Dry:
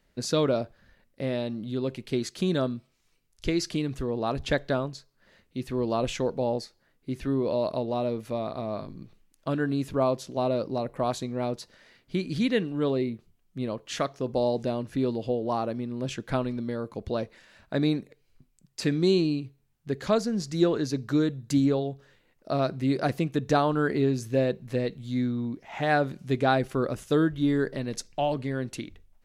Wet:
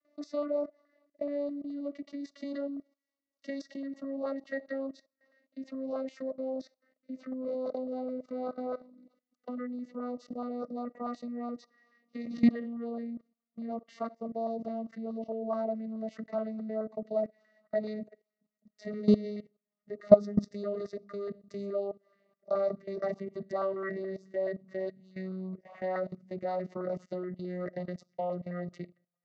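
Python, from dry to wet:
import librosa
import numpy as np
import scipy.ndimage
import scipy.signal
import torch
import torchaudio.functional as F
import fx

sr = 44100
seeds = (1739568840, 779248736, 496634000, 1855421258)

y = fx.vocoder_glide(x, sr, note=62, semitones=-9)
y = fx.peak_eq(y, sr, hz=3300.0, db=-11.0, octaves=0.22)
y = fx.filter_lfo_notch(y, sr, shape='saw_up', hz=4.7, low_hz=700.0, high_hz=2100.0, q=1.4)
y = fx.high_shelf(y, sr, hz=2600.0, db=7.5)
y = fx.level_steps(y, sr, step_db=19)
y = scipy.signal.sosfilt(scipy.signal.butter(4, 6100.0, 'lowpass', fs=sr, output='sos'), y)
y = fx.notch(y, sr, hz=2500.0, q=6.6)
y = fx.small_body(y, sr, hz=(630.0, 1200.0, 1900.0), ring_ms=40, db=17)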